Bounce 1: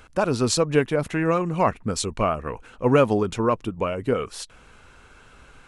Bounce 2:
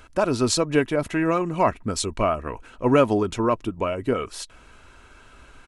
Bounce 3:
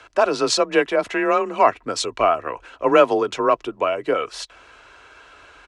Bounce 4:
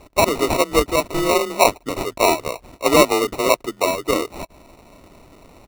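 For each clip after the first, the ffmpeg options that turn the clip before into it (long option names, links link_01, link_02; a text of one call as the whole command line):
ffmpeg -i in.wav -af "aecho=1:1:3.1:0.32" out.wav
ffmpeg -i in.wav -filter_complex "[0:a]acrossover=split=330 6900:gain=0.126 1 0.126[link_01][link_02][link_03];[link_01][link_02][link_03]amix=inputs=3:normalize=0,afreqshift=29,volume=5.5dB" out.wav
ffmpeg -i in.wav -af "acrusher=samples=27:mix=1:aa=0.000001,volume=1dB" out.wav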